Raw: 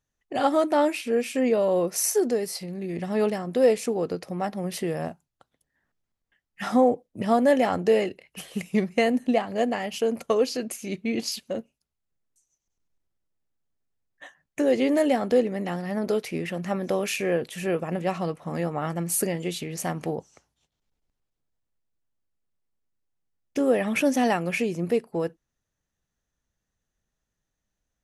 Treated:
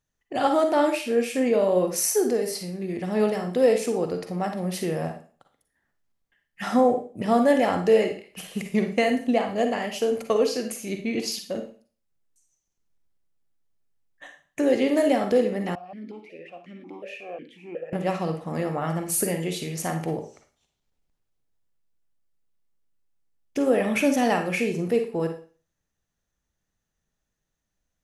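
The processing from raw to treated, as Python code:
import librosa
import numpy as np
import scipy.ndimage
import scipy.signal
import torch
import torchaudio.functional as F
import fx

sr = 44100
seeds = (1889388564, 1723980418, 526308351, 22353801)

y = fx.rev_schroeder(x, sr, rt60_s=0.4, comb_ms=38, drr_db=5.5)
y = fx.vowel_held(y, sr, hz=5.5, at=(15.75, 17.93))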